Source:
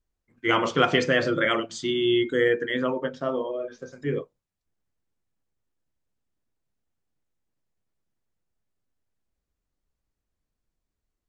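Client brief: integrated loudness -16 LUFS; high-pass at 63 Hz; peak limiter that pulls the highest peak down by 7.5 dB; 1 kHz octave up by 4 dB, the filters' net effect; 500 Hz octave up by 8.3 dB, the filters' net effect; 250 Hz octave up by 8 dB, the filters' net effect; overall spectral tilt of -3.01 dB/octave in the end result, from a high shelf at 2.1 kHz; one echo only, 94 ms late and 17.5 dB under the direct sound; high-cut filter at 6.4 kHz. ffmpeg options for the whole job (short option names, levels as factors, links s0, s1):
-af "highpass=63,lowpass=6400,equalizer=f=250:t=o:g=7.5,equalizer=f=500:t=o:g=7,equalizer=f=1000:t=o:g=4.5,highshelf=f=2100:g=-5,alimiter=limit=0.398:level=0:latency=1,aecho=1:1:94:0.133,volume=1.5"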